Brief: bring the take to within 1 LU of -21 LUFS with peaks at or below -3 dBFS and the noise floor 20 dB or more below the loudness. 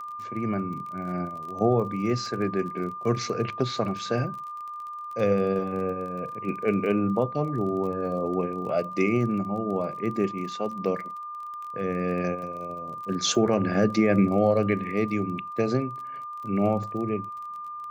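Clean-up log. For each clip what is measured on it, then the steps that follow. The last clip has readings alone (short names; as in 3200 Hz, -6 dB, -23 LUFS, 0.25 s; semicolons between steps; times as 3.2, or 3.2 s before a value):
ticks 29/s; steady tone 1200 Hz; tone level -34 dBFS; loudness -27.5 LUFS; peak -10.0 dBFS; loudness target -21.0 LUFS
-> de-click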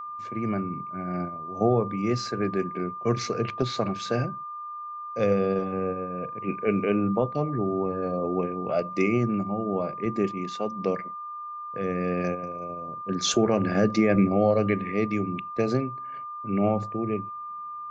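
ticks 0/s; steady tone 1200 Hz; tone level -34 dBFS
-> notch 1200 Hz, Q 30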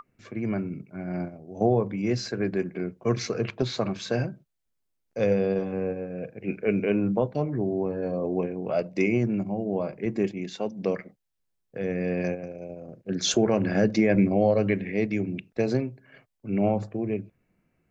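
steady tone none; loudness -27.5 LUFS; peak -10.5 dBFS; loudness target -21.0 LUFS
-> gain +6.5 dB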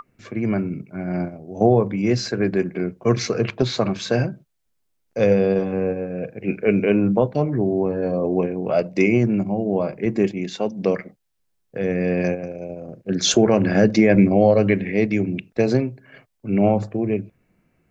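loudness -21.0 LUFS; peak -4.0 dBFS; noise floor -70 dBFS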